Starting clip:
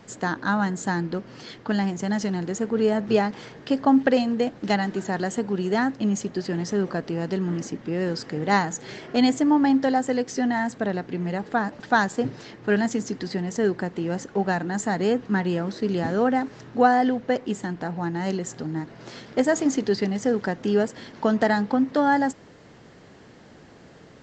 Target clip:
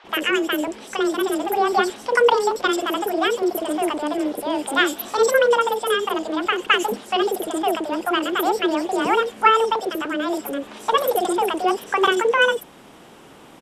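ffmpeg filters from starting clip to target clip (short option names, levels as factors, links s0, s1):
-filter_complex "[0:a]aresample=16000,aresample=44100,asetrate=78498,aresample=44100,acrossover=split=620|4700[s0][s1][s2];[s0]adelay=40[s3];[s2]adelay=90[s4];[s3][s1][s4]amix=inputs=3:normalize=0,volume=1.68"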